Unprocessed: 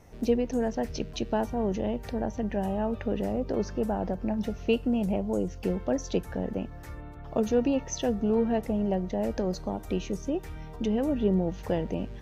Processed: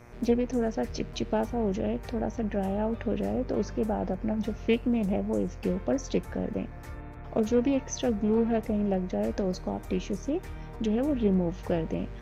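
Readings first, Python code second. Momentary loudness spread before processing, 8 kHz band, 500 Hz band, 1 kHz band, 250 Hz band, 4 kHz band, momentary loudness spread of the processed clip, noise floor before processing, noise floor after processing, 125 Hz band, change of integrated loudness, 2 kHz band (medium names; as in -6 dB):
7 LU, no reading, 0.0 dB, -1.0 dB, +0.5 dB, -1.0 dB, 8 LU, -42 dBFS, -42 dBFS, +0.5 dB, 0.0 dB, +0.5 dB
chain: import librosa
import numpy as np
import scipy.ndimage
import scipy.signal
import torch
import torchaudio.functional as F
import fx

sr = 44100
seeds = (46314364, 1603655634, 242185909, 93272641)

y = fx.dmg_buzz(x, sr, base_hz=120.0, harmonics=21, level_db=-53.0, tilt_db=-4, odd_only=False)
y = fx.doppler_dist(y, sr, depth_ms=0.2)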